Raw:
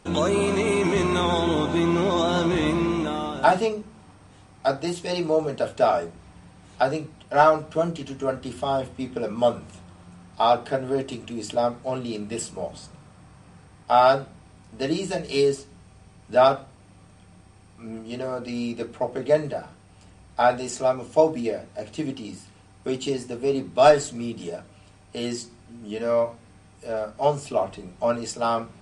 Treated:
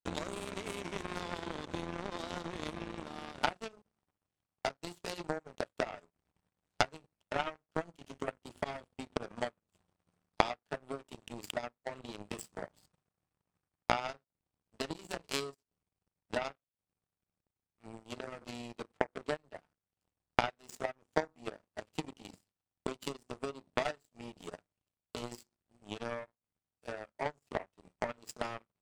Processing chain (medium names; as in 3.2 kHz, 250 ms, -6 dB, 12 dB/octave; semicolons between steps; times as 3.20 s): compression 6:1, threshold -32 dBFS, peak gain reduction 20.5 dB; power-law waveshaper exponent 3; trim +15 dB